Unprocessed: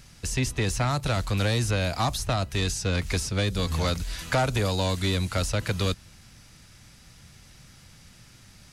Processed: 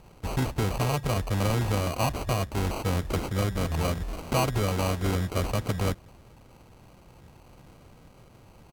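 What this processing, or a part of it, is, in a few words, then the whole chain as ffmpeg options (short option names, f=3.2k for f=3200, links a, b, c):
crushed at another speed: -af "asetrate=55125,aresample=44100,acrusher=samples=20:mix=1:aa=0.000001,asetrate=35280,aresample=44100,volume=-1dB"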